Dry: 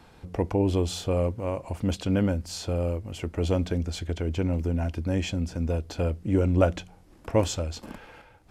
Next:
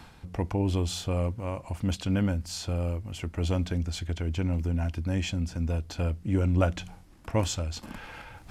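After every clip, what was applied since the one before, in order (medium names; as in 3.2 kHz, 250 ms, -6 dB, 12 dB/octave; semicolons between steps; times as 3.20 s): peaking EQ 450 Hz -7.5 dB 1.3 oct; reverse; upward compressor, threshold -35 dBFS; reverse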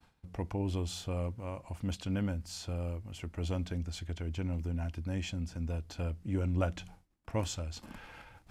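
expander -42 dBFS; trim -7 dB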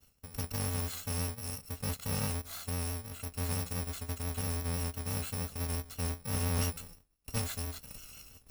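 bit-reversed sample order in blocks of 128 samples; vibrato 5.9 Hz 38 cents; slew-rate limiter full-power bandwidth 150 Hz; trim +1 dB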